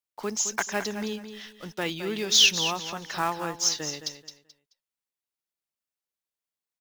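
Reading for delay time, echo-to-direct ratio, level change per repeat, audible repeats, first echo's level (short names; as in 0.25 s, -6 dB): 0.216 s, -9.5 dB, -12.0 dB, 3, -10.0 dB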